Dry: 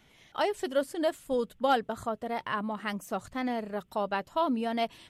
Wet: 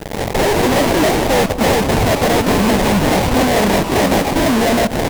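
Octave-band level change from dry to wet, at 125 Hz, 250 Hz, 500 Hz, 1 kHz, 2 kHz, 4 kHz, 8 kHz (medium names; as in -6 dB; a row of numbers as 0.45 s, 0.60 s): +29.0 dB, +18.5 dB, +16.0 dB, +14.0 dB, +18.5 dB, +19.5 dB, +27.0 dB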